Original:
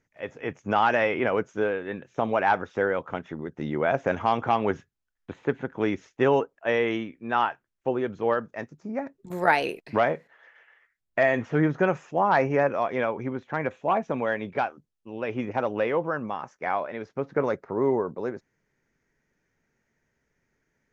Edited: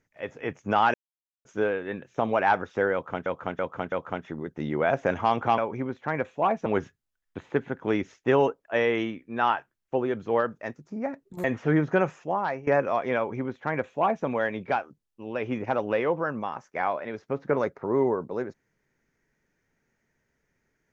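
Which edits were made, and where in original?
0.94–1.45 mute
2.93–3.26 loop, 4 plays
9.37–11.31 cut
11.94–12.54 fade out, to -18 dB
13.04–14.12 copy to 4.59

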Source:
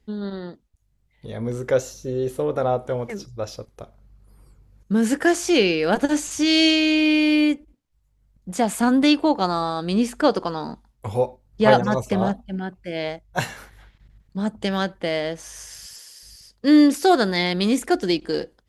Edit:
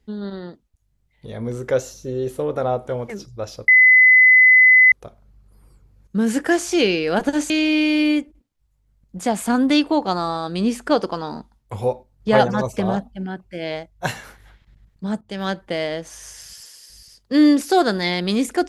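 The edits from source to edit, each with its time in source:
3.68 add tone 2020 Hz -7.5 dBFS 1.24 s
6.26–6.83 cut
14.54–14.83 fade in, from -21 dB

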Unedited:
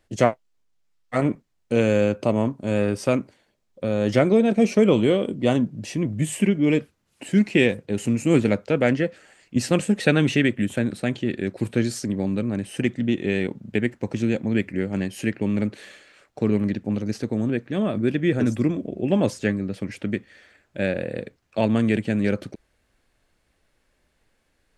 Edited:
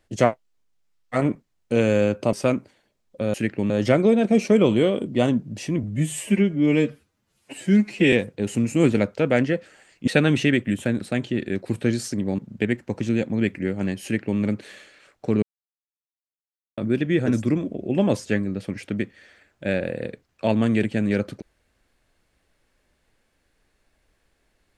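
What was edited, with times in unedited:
2.33–2.96 cut
6.1–7.63 stretch 1.5×
9.58–9.99 cut
12.3–13.52 cut
15.17–15.53 copy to 3.97
16.56–17.91 mute

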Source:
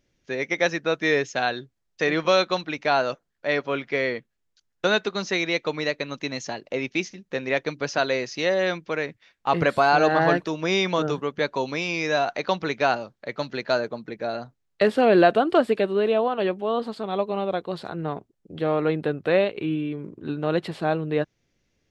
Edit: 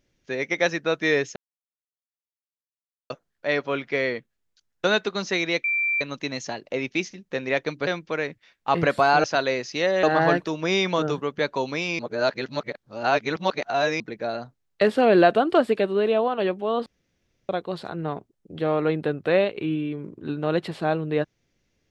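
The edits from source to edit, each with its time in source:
1.36–3.1 mute
5.64–6.01 bleep 2350 Hz -20.5 dBFS
7.87–8.66 move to 10.03
11.99–14 reverse
16.86–17.49 room tone

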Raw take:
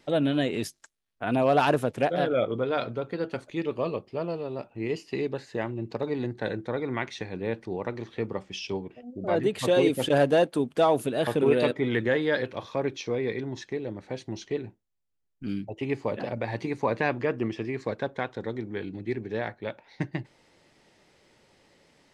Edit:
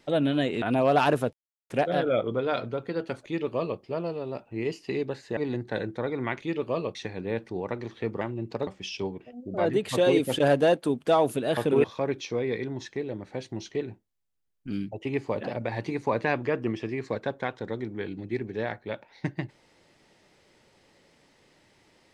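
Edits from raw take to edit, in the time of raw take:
0.62–1.23 cut
1.94 insert silence 0.37 s
3.5–4.04 copy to 7.11
5.61–6.07 move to 8.37
11.54–12.6 cut

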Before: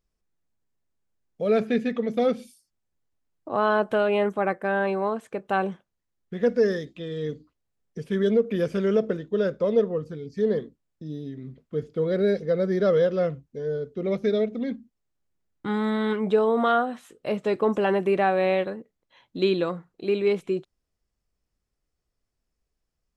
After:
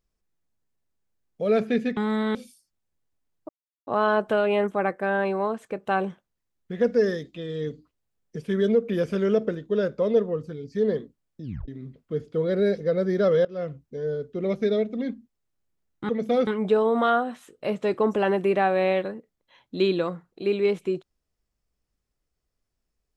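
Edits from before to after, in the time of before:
1.97–2.35 swap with 15.71–16.09
3.49 insert silence 0.38 s
11.05 tape stop 0.25 s
13.07–13.44 fade in, from -20.5 dB

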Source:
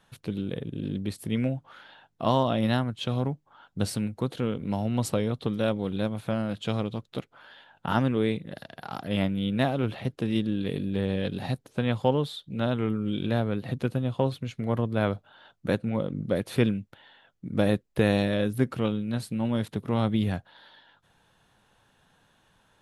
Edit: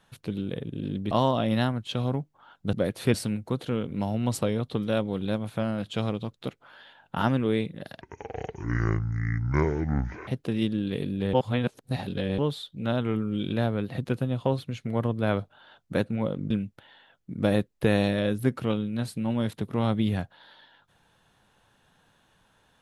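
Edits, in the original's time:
1.11–2.23 cut
8.72–10.01 speed 57%
11.07–12.12 reverse
16.24–16.65 move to 3.85

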